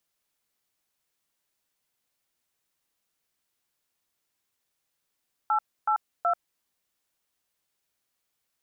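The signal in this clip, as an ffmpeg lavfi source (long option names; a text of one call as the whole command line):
ffmpeg -f lavfi -i "aevalsrc='0.0668*clip(min(mod(t,0.374),0.088-mod(t,0.374))/0.002,0,1)*(eq(floor(t/0.374),0)*(sin(2*PI*852*mod(t,0.374))+sin(2*PI*1336*mod(t,0.374)))+eq(floor(t/0.374),1)*(sin(2*PI*852*mod(t,0.374))+sin(2*PI*1336*mod(t,0.374)))+eq(floor(t/0.374),2)*(sin(2*PI*697*mod(t,0.374))+sin(2*PI*1336*mod(t,0.374))))':duration=1.122:sample_rate=44100" out.wav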